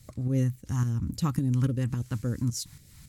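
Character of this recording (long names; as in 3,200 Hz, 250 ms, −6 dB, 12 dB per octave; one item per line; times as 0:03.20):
phaser sweep stages 2, 3.6 Hz, lowest notch 480–1,000 Hz
tremolo saw up 3.6 Hz, depth 55%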